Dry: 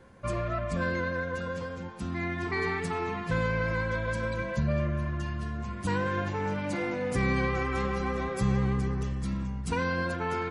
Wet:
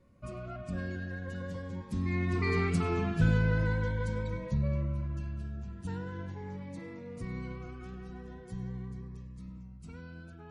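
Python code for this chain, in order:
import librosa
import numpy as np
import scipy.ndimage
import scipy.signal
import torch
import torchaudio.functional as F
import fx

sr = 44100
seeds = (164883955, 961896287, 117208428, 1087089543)

p1 = fx.doppler_pass(x, sr, speed_mps=15, closest_m=10.0, pass_at_s=2.83)
p2 = fx.low_shelf(p1, sr, hz=280.0, db=9.0)
p3 = fx.hum_notches(p2, sr, base_hz=60, count=2)
p4 = p3 + fx.echo_single(p3, sr, ms=101, db=-22.5, dry=0)
y = fx.notch_cascade(p4, sr, direction='rising', hz=0.42)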